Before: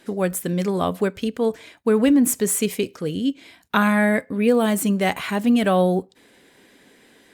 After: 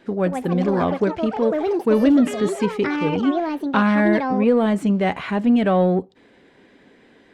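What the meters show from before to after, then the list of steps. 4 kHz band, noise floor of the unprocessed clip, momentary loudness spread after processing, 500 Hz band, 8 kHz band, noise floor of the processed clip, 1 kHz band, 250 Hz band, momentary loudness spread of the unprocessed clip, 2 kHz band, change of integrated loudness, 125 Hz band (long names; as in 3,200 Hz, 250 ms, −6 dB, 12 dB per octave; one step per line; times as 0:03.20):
−3.5 dB, −55 dBFS, 5 LU, +2.0 dB, below −15 dB, −53 dBFS, +2.0 dB, +2.0 dB, 8 LU, −1.0 dB, +1.5 dB, +2.0 dB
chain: in parallel at −6 dB: soft clipping −21 dBFS, distortion −9 dB
on the sum: delay with pitch and tempo change per echo 199 ms, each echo +6 semitones, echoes 3, each echo −6 dB
head-to-tape spacing loss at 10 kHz 23 dB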